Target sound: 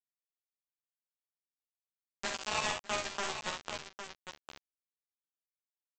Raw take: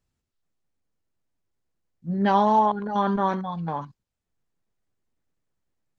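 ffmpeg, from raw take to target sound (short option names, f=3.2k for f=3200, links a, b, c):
-filter_complex "[0:a]afwtdn=0.0251,highpass=1k,acompressor=threshold=-37dB:ratio=10,alimiter=level_in=9.5dB:limit=-24dB:level=0:latency=1:release=433,volume=-9.5dB,acontrast=68,aresample=16000,acrusher=bits=4:mix=0:aa=0.000001,aresample=44100,asplit=2[a][b];[b]adelay=13,volume=-2.5dB[c];[a][c]amix=inputs=2:normalize=0,aecho=1:1:47|68|606|806:0.473|0.447|0.106|0.376"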